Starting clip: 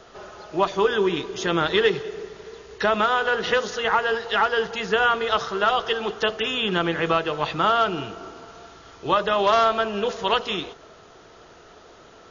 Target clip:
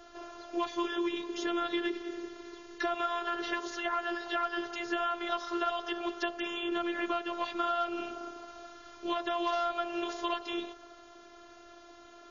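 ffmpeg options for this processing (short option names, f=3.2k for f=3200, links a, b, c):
-filter_complex "[0:a]afftfilt=real='hypot(re,im)*cos(PI*b)':imag='0':win_size=512:overlap=0.75,acrossover=split=110|1600[a][b][c];[a]acompressor=threshold=-55dB:ratio=4[d];[b]acompressor=threshold=-29dB:ratio=4[e];[c]acompressor=threshold=-37dB:ratio=4[f];[d][e][f]amix=inputs=3:normalize=0,volume=-2dB"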